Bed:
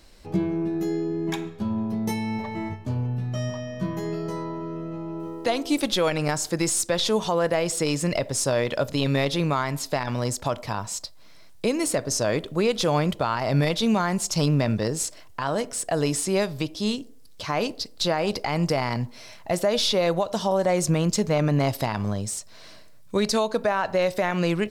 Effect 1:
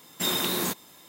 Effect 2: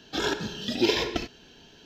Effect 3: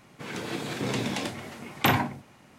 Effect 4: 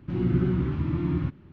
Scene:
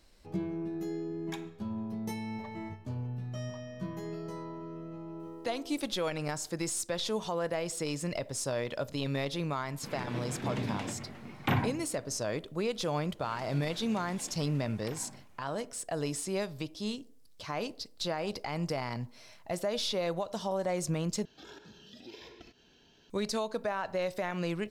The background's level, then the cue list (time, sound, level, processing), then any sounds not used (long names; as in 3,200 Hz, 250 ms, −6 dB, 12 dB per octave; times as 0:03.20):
bed −10 dB
0:09.63: mix in 3 −8 dB + bass and treble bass +7 dB, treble −10 dB
0:13.03: mix in 3 −12.5 dB + downward compressor, threshold −32 dBFS
0:21.25: overwrite with 2 −9.5 dB + downward compressor 2 to 1, threshold −49 dBFS
not used: 1, 4